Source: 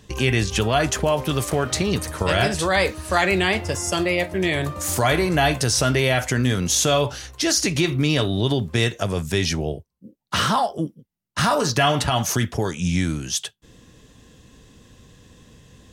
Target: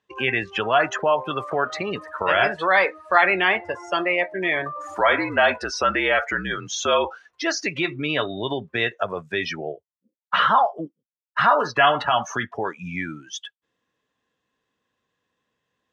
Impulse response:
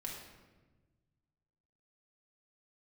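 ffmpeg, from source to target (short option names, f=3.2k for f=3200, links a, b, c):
-filter_complex "[0:a]asettb=1/sr,asplit=3[a][b][c];[a]atrim=end=4.984[d];[b]atrim=start=4.98:end=7.33,asetpts=PTS-STARTPTS,afade=t=in:d=0.004:c=qsin,afade=t=out:st=2.346:d=0.004:c=qsin,afreqshift=-57[e];[c]atrim=start=7.326[f];[d][e]acrossfade=d=0.004:c1=hsin:c2=qsin[g];[g][f]acrossfade=d=0.004:c1=qsin:c2=hsin,bandpass=f=1.3k:t=q:w=0.86:csg=0,afftdn=nr=23:nf=-32,volume=5.5dB"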